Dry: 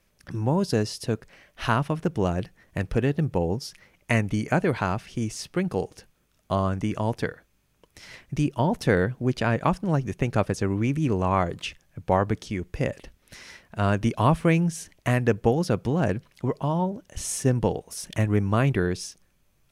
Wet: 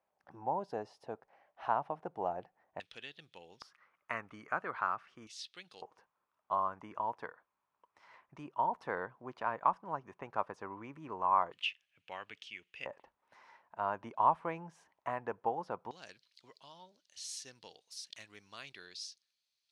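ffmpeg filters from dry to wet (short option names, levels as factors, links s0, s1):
-af "asetnsamples=n=441:p=0,asendcmd='2.8 bandpass f 3500;3.62 bandpass f 1200;5.27 bandpass f 3700;5.82 bandpass f 1000;11.52 bandpass f 2800;12.86 bandpass f 930;15.91 bandpass f 4300',bandpass=f=800:t=q:w=4.3:csg=0"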